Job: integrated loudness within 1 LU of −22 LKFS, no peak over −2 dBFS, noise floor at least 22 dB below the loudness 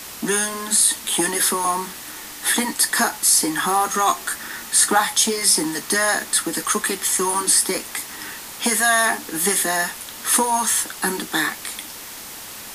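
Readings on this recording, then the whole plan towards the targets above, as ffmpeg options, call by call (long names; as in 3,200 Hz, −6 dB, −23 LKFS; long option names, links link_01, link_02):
background noise floor −36 dBFS; target noise floor −41 dBFS; integrated loudness −19.0 LKFS; sample peak −2.5 dBFS; target loudness −22.0 LKFS
→ -af "afftdn=noise_reduction=6:noise_floor=-36"
-af "volume=-3dB"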